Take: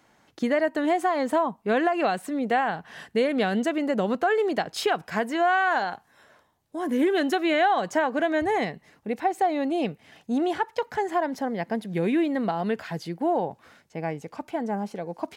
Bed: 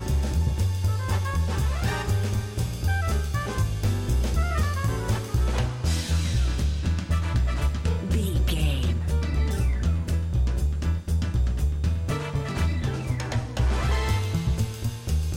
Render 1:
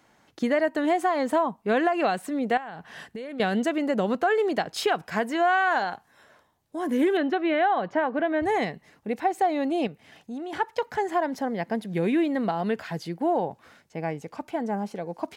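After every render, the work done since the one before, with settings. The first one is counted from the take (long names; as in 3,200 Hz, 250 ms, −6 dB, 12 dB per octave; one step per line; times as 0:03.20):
0:02.57–0:03.40: downward compressor 8 to 1, threshold −33 dBFS
0:07.17–0:08.43: high-frequency loss of the air 310 metres
0:09.87–0:10.53: downward compressor 2 to 1, threshold −40 dBFS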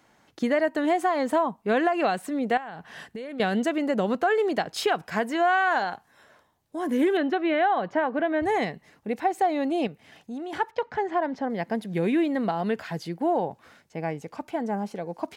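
0:10.71–0:11.50: high-frequency loss of the air 160 metres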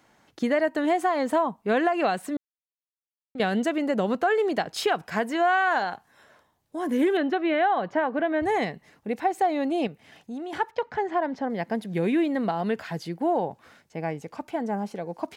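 0:02.37–0:03.35: silence
0:04.12–0:04.54: floating-point word with a short mantissa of 8 bits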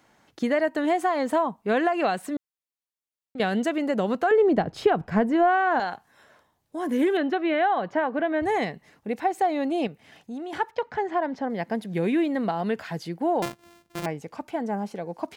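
0:04.31–0:05.80: spectral tilt −4 dB per octave
0:13.42–0:14.06: samples sorted by size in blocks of 128 samples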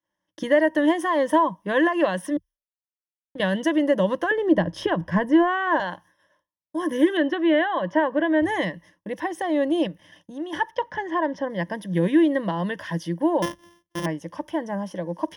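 downward expander −46 dBFS
EQ curve with evenly spaced ripples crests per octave 1.2, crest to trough 15 dB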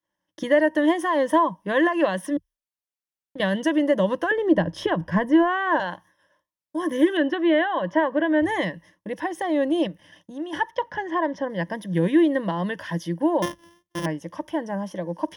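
tape wow and flutter 29 cents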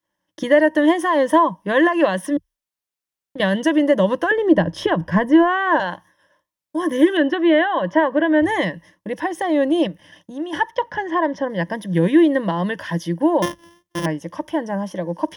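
level +4.5 dB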